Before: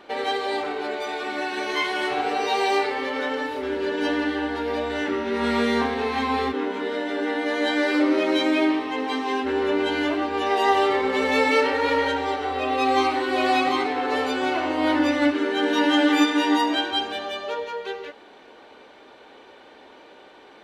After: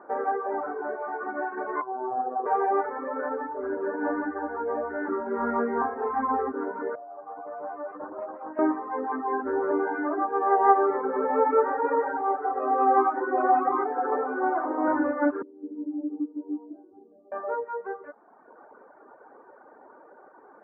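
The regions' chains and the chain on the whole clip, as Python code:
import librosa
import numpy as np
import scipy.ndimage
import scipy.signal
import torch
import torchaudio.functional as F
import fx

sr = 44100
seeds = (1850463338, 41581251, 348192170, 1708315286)

y = fx.chain(x, sr, fx.lowpass(hz=1200.0, slope=24),
    fx.robotise(hz=127.0), at=(1.81, 2.46))
y = fx.chain(y, sr, fx.vowel_filter(vowel='a'),
    fx.low_shelf(hz=290.0, db=5.0),
    fx.doppler_dist(depth_ms=0.33), at=(6.95, 8.59))
y = fx.chain(y, sr, fx.highpass(hz=120.0, slope=24),
    fx.comb(ms=2.5, depth=0.32), at=(9.71, 14.88))
y = fx.chain(y, sr, fx.ladder_lowpass(hz=370.0, resonance_pct=45),
    fx.tilt_eq(slope=2.0), at=(15.42, 17.32))
y = scipy.signal.sosfilt(scipy.signal.butter(8, 1500.0, 'lowpass', fs=sr, output='sos'), y)
y = fx.dereverb_blind(y, sr, rt60_s=1.2)
y = fx.highpass(y, sr, hz=450.0, slope=6)
y = y * librosa.db_to_amplitude(2.5)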